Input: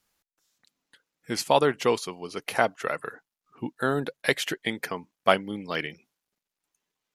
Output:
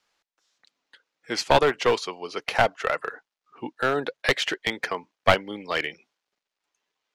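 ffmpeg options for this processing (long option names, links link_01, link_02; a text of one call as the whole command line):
ffmpeg -i in.wav -filter_complex "[0:a]acrossover=split=350 6500:gain=0.224 1 0.0794[link_01][link_02][link_03];[link_01][link_02][link_03]amix=inputs=3:normalize=0,aeval=exprs='clip(val(0),-1,0.075)':channel_layout=same,volume=5dB" out.wav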